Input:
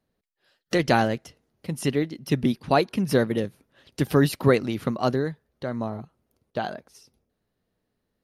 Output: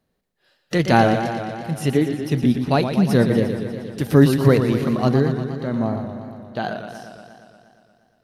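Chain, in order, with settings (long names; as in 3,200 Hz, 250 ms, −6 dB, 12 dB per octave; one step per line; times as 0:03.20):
harmonic and percussive parts rebalanced harmonic +9 dB
feedback echo with a swinging delay time 118 ms, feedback 73%, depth 118 cents, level −8.5 dB
level −1 dB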